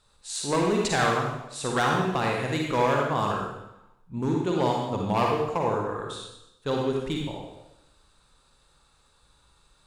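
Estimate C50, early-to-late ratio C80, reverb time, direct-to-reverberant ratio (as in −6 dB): 0.0 dB, 3.5 dB, 0.90 s, −1.0 dB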